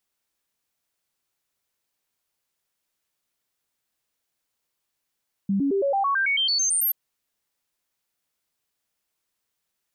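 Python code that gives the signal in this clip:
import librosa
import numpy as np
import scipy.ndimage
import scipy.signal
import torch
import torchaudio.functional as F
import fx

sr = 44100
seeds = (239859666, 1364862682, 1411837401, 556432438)

y = fx.stepped_sweep(sr, from_hz=197.0, direction='up', per_octave=2, tones=13, dwell_s=0.11, gap_s=0.0, level_db=-19.5)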